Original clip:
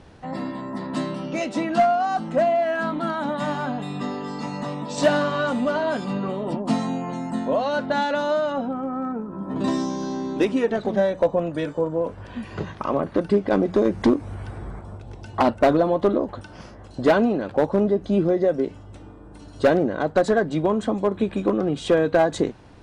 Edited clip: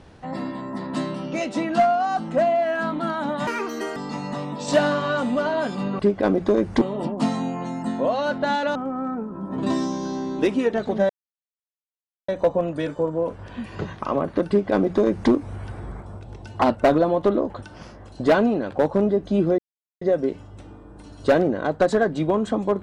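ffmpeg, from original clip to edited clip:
-filter_complex "[0:a]asplit=8[a][b][c][d][e][f][g][h];[a]atrim=end=3.474[i];[b]atrim=start=3.47:end=4.26,asetpts=PTS-STARTPTS,asetrate=70560,aresample=44100,atrim=end_sample=21774,asetpts=PTS-STARTPTS[j];[c]atrim=start=4.256:end=6.292[k];[d]atrim=start=13.268:end=14.092[l];[e]atrim=start=6.288:end=8.232[m];[f]atrim=start=8.728:end=11.07,asetpts=PTS-STARTPTS,afade=t=out:st=2.338:d=0.004:c=hsin,apad=pad_dur=1.19[n];[g]atrim=start=11.07:end=18.37,asetpts=PTS-STARTPTS,afade=t=in:d=0.004:c=hsin,afade=t=out:st=7.296:d=0.004:c=hsin,apad=pad_dur=0.43[o];[h]atrim=start=18.37,asetpts=PTS-STARTPTS,afade=t=in:d=0.004:c=hsin[p];[i][j]acrossfade=d=0.004:c1=hsin:c2=hsin[q];[q][k]acrossfade=d=0.004:c1=hsin:c2=hsin[r];[r][l]acrossfade=d=0.004:c1=hsin:c2=hsin[s];[s][m]acrossfade=d=0.004:c1=hsin:c2=hsin[t];[n][o][p]concat=n=3:v=0:a=1[u];[t][u]acrossfade=d=0.004:c1=hsin:c2=hsin"

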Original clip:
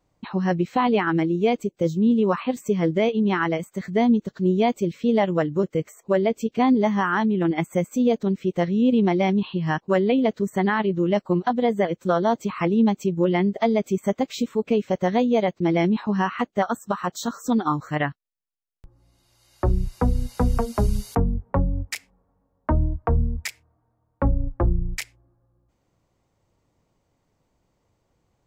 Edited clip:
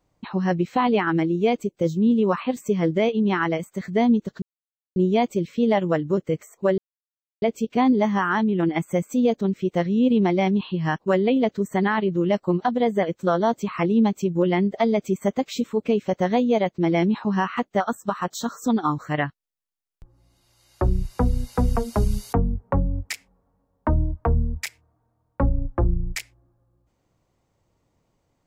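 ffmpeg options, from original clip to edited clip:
-filter_complex "[0:a]asplit=3[a][b][c];[a]atrim=end=4.42,asetpts=PTS-STARTPTS,afade=t=out:st=4.416:d=0.004:c=hsin,apad=pad_dur=0.54[d];[b]atrim=start=4.42:end=6.24,asetpts=PTS-STARTPTS,afade=t=in:d=0.004:c=hsin,afade=t=out:st=1.816:d=0.004:c=hsin,apad=pad_dur=0.64[e];[c]atrim=start=6.24,asetpts=PTS-STARTPTS,afade=t=in:d=0.004:c=hsin[f];[d][e][f]concat=n=3:v=0:a=1"

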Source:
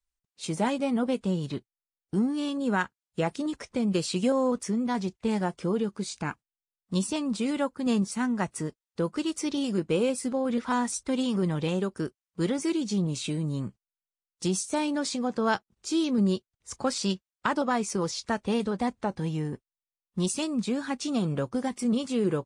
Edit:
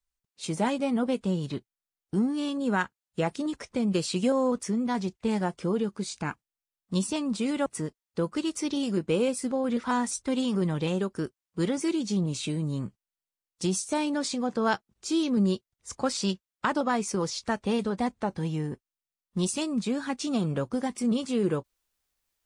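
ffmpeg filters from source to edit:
-filter_complex "[0:a]asplit=2[a][b];[a]atrim=end=7.662[c];[b]atrim=start=8.468[d];[c][d]acrossfade=d=0.004:c1=hsin:c2=hsin"

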